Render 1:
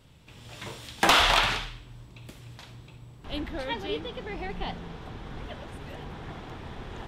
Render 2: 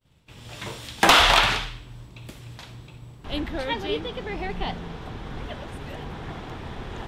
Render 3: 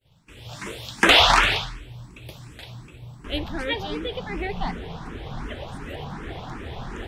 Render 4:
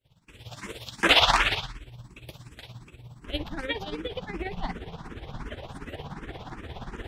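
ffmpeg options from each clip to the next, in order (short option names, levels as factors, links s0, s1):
-af "agate=range=0.0224:threshold=0.00447:ratio=3:detection=peak,volume=1.68"
-filter_complex "[0:a]acrossover=split=7400[s0][s1];[s1]alimiter=limit=0.0631:level=0:latency=1:release=376[s2];[s0][s2]amix=inputs=2:normalize=0,asplit=2[s3][s4];[s4]afreqshift=2.7[s5];[s3][s5]amix=inputs=2:normalize=1,volume=1.58"
-af "tremolo=f=17:d=0.69,volume=0.841"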